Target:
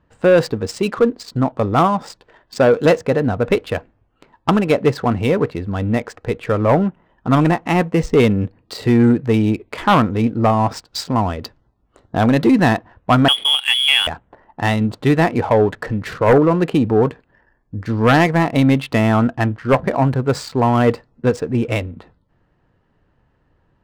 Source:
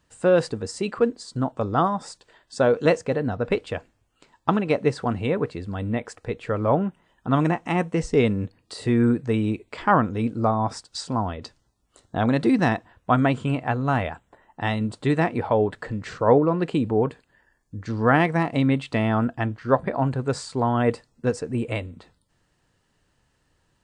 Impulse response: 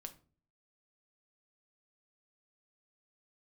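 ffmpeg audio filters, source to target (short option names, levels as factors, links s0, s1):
-filter_complex "[0:a]aeval=exprs='0.631*sin(PI/2*2*val(0)/0.631)':c=same,asettb=1/sr,asplit=3[s0][s1][s2];[s0]atrim=end=13.284[s3];[s1]atrim=start=13.28:end=14.07,asetpts=PTS-STARTPTS,afade=t=in:d=0.004:c=qsin,afade=t=out:st=0.786:d=0.004:c=qsin,lowpass=f=3000:t=q:w=0.5098,lowpass=f=3000:t=q:w=0.6013,lowpass=f=3000:t=q:w=0.9,lowpass=f=3000:t=q:w=2.563,afreqshift=-3500[s4];[s2]atrim=start=14.066[s5];[s3][s4]acrossfade=d=0.004:c1=hsin:c2=qsin[s6];[s6][s5]acrossfade=d=0.004:c1=qsin:c2=hsin,adynamicsmooth=sensitivity=5:basefreq=1700,volume=0.794"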